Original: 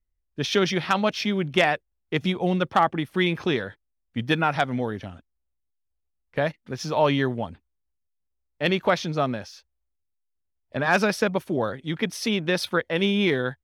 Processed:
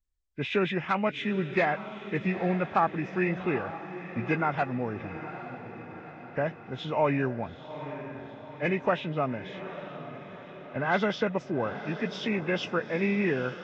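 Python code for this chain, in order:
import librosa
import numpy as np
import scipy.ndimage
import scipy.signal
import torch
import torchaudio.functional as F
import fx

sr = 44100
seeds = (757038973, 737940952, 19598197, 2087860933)

y = fx.freq_compress(x, sr, knee_hz=1400.0, ratio=1.5)
y = fx.echo_diffused(y, sr, ms=859, feedback_pct=56, wet_db=-11.5)
y = y * 10.0 ** (-4.5 / 20.0)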